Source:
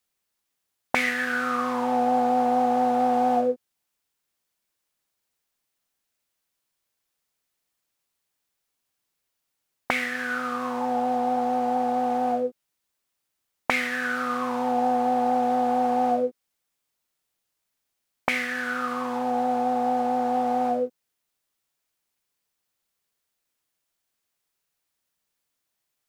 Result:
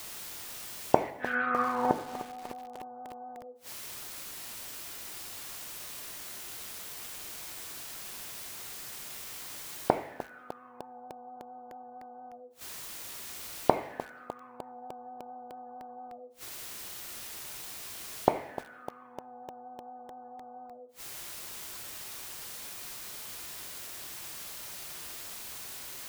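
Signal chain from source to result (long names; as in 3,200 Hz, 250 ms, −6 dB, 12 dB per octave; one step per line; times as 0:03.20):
in parallel at −3.5 dB: bit-depth reduction 8 bits, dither triangular
0:01.10–0:01.91: on the sum: downward expander −10 dBFS
gate on every frequency bin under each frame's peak −30 dB strong
gate with flip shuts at −19 dBFS, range −36 dB
on a send at −7 dB: convolution reverb, pre-delay 3 ms
on the sum: feedback echo at a low word length 302 ms, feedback 80%, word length 7 bits, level −14 dB
level +8 dB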